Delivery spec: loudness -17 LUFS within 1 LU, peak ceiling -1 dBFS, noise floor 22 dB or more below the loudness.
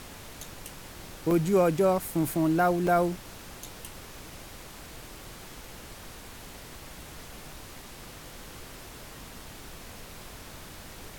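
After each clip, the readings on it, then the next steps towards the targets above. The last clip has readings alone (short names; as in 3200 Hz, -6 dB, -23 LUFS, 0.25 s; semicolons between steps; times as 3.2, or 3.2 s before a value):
dropouts 3; longest dropout 1.9 ms; noise floor -46 dBFS; noise floor target -49 dBFS; loudness -26.5 LUFS; peak -12.0 dBFS; loudness target -17.0 LUFS
-> interpolate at 1.31/2.16/2.87, 1.9 ms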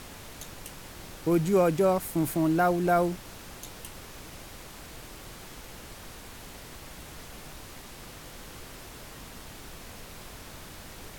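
dropouts 0; noise floor -46 dBFS; noise floor target -48 dBFS
-> noise print and reduce 6 dB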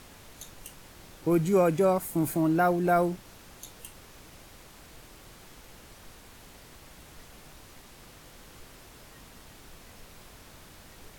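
noise floor -52 dBFS; loudness -25.5 LUFS; peak -12.5 dBFS; loudness target -17.0 LUFS
-> gain +8.5 dB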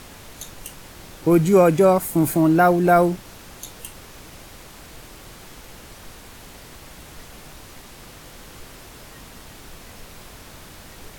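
loudness -17.0 LUFS; peak -4.0 dBFS; noise floor -43 dBFS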